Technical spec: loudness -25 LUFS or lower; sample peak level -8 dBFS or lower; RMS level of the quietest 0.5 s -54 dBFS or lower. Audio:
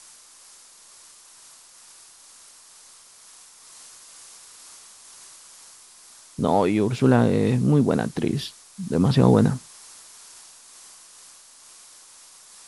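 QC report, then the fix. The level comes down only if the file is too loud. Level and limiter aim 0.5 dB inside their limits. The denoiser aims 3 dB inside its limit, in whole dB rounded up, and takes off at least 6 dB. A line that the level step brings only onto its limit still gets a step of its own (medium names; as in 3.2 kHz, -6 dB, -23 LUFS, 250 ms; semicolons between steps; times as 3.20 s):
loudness -21.0 LUFS: fail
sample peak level -4.5 dBFS: fail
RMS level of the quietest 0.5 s -50 dBFS: fail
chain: trim -4.5 dB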